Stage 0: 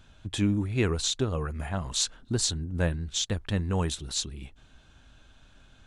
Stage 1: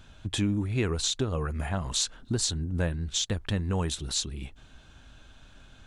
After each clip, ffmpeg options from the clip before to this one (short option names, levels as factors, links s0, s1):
-af "acompressor=threshold=0.0282:ratio=2,volume=1.5"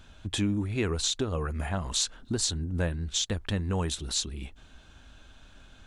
-af "equalizer=f=130:t=o:w=0.38:g=-6.5"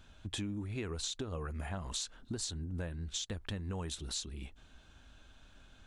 -af "acompressor=threshold=0.0355:ratio=6,volume=0.501"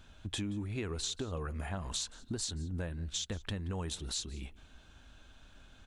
-af "aecho=1:1:177:0.0841,volume=1.19"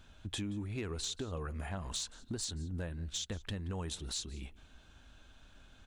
-af "asoftclip=type=hard:threshold=0.0376,volume=0.841"